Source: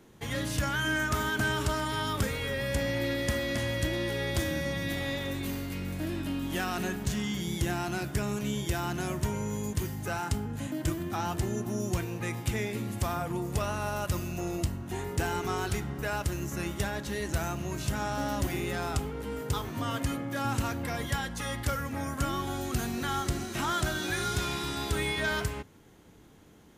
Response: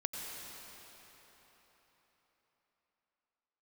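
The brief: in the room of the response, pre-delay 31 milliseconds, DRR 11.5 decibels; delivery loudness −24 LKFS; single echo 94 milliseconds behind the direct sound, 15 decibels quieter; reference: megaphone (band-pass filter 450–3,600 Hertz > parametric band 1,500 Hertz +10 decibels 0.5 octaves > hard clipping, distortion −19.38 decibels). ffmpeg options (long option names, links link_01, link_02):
-filter_complex "[0:a]aecho=1:1:94:0.178,asplit=2[link_01][link_02];[1:a]atrim=start_sample=2205,adelay=31[link_03];[link_02][link_03]afir=irnorm=-1:irlink=0,volume=-13.5dB[link_04];[link_01][link_04]amix=inputs=2:normalize=0,highpass=450,lowpass=3600,equalizer=frequency=1500:width_type=o:width=0.5:gain=10,asoftclip=type=hard:threshold=-20dB,volume=6.5dB"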